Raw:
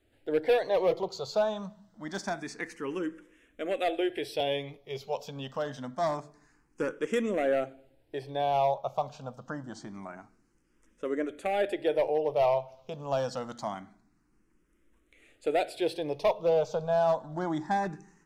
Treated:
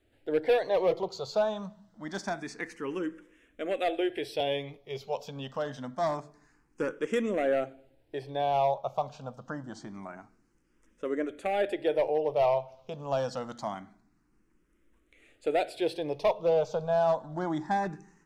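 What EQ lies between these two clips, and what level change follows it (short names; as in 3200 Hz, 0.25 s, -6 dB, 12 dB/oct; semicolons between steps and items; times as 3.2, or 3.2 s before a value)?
high shelf 7000 Hz -4 dB; 0.0 dB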